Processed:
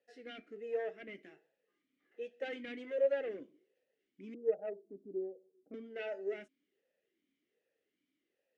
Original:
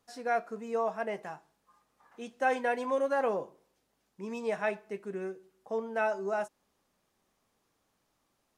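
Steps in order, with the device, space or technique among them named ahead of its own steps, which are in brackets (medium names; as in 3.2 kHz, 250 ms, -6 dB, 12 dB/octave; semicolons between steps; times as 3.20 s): 4.34–5.74 s: Chebyshev low-pass 810 Hz, order 6; talk box (valve stage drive 27 dB, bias 0.6; talking filter e-i 1.3 Hz); trim +8 dB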